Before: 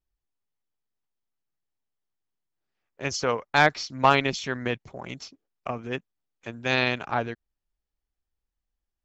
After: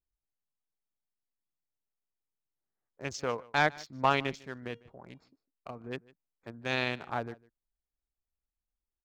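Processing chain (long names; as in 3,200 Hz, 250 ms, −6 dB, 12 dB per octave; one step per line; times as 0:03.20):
adaptive Wiener filter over 15 samples
0:04.32–0:05.81: tuned comb filter 470 Hz, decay 0.32 s, harmonics all, mix 40%
on a send: single-tap delay 151 ms −23 dB
on the sum: level −7 dB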